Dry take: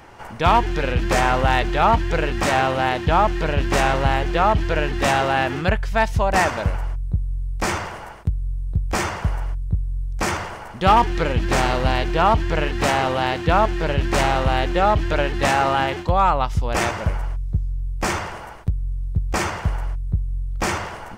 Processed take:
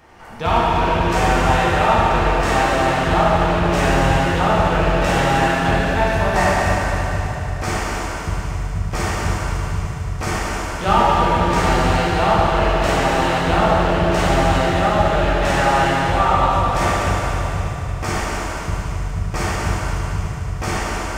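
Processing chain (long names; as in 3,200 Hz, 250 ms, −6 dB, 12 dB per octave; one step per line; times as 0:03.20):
on a send: echo machine with several playback heads 75 ms, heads first and third, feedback 72%, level −11.5 dB
on the sum: dense smooth reverb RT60 3.2 s, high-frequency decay 0.95×, DRR −7 dB
level −6 dB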